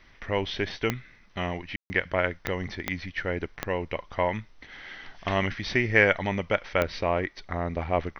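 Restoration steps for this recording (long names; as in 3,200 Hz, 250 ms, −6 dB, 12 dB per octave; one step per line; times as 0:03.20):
click removal
ambience match 0:01.76–0:01.90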